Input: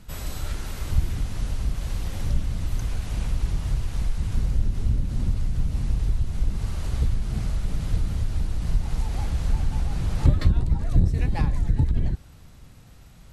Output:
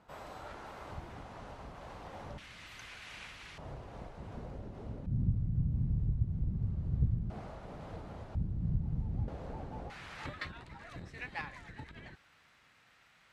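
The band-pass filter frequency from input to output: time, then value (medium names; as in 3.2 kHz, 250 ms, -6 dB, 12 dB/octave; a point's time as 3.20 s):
band-pass filter, Q 1.4
810 Hz
from 2.38 s 2.2 kHz
from 3.58 s 620 Hz
from 5.06 s 140 Hz
from 7.30 s 700 Hz
from 8.35 s 150 Hz
from 9.28 s 530 Hz
from 9.90 s 1.9 kHz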